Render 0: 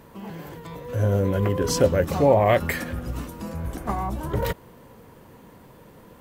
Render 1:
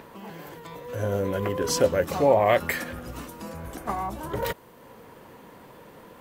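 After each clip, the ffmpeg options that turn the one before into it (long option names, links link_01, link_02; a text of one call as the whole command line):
ffmpeg -i in.wav -filter_complex "[0:a]lowshelf=frequency=210:gain=-11.5,acrossover=split=4400[link_01][link_02];[link_01]acompressor=mode=upward:threshold=-41dB:ratio=2.5[link_03];[link_03][link_02]amix=inputs=2:normalize=0" out.wav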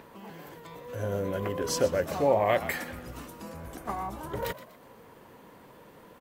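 ffmpeg -i in.wav -filter_complex "[0:a]asplit=5[link_01][link_02][link_03][link_04][link_05];[link_02]adelay=122,afreqshift=69,volume=-15dB[link_06];[link_03]adelay=244,afreqshift=138,volume=-23.2dB[link_07];[link_04]adelay=366,afreqshift=207,volume=-31.4dB[link_08];[link_05]adelay=488,afreqshift=276,volume=-39.5dB[link_09];[link_01][link_06][link_07][link_08][link_09]amix=inputs=5:normalize=0,volume=-4.5dB" out.wav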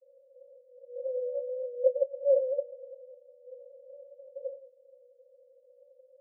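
ffmpeg -i in.wav -af "asuperpass=centerf=530:order=20:qfactor=6,volume=2dB" out.wav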